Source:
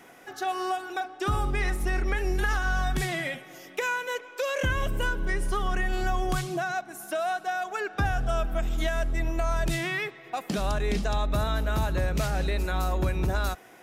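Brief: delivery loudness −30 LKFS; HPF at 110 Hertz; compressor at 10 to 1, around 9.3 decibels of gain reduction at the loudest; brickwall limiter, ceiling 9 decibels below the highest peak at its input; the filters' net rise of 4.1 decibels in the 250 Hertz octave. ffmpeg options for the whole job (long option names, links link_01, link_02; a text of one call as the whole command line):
ffmpeg -i in.wav -af "highpass=110,equalizer=frequency=250:width_type=o:gain=6.5,acompressor=threshold=-32dB:ratio=10,volume=8.5dB,alimiter=limit=-21.5dB:level=0:latency=1" out.wav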